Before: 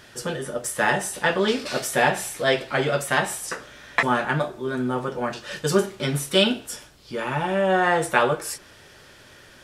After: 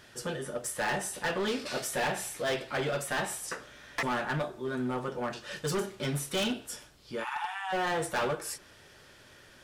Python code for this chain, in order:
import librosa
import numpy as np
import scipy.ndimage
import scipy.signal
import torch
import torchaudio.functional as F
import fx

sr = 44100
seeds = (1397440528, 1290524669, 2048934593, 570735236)

y = fx.brickwall_highpass(x, sr, low_hz=720.0, at=(7.23, 7.72), fade=0.02)
y = np.clip(10.0 ** (20.0 / 20.0) * y, -1.0, 1.0) / 10.0 ** (20.0 / 20.0)
y = F.gain(torch.from_numpy(y), -6.5).numpy()